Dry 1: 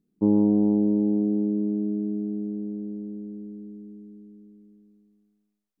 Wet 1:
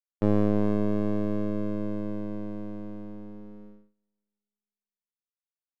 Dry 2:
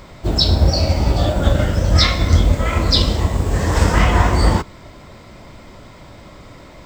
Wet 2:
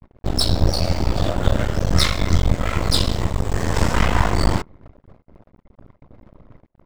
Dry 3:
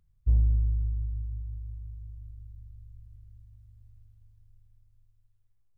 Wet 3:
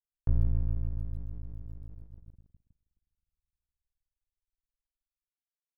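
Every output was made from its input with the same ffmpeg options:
-af "anlmdn=2.51,aeval=exprs='max(val(0),0)':c=same,agate=range=0.0398:threshold=0.00562:ratio=16:detection=peak"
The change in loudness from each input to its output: -4.5 LU, -4.5 LU, -4.0 LU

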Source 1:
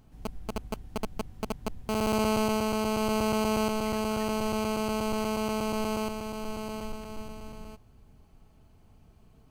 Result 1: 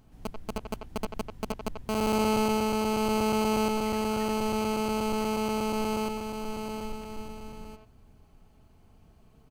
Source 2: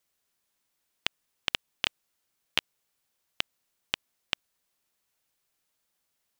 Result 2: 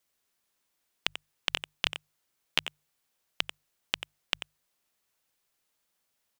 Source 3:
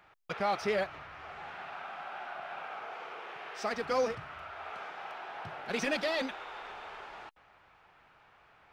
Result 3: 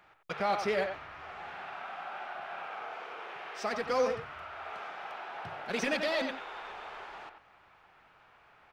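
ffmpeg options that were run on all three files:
-filter_complex "[0:a]bandreject=f=50:t=h:w=6,bandreject=f=100:t=h:w=6,bandreject=f=150:t=h:w=6,asplit=2[s0][s1];[s1]adelay=90,highpass=300,lowpass=3400,asoftclip=type=hard:threshold=0.2,volume=0.501[s2];[s0][s2]amix=inputs=2:normalize=0"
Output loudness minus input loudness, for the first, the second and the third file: +1.0 LU, 0.0 LU, +1.0 LU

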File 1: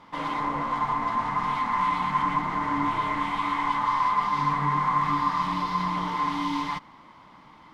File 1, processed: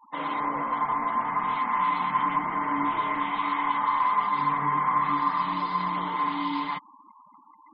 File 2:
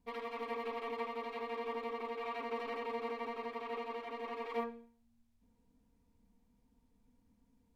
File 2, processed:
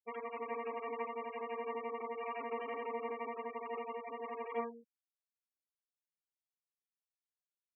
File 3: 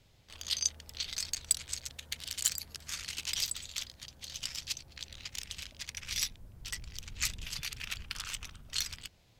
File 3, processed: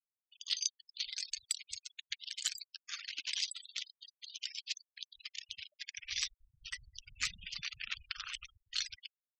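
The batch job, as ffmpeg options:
-filter_complex "[0:a]acrossover=split=190 6000:gain=0.224 1 0.2[s0][s1][s2];[s0][s1][s2]amix=inputs=3:normalize=0,afftfilt=real='re*gte(hypot(re,im),0.00891)':imag='im*gte(hypot(re,im),0.00891)':win_size=1024:overlap=0.75"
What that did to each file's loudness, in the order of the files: 0.0 LU, -0.5 LU, -3.5 LU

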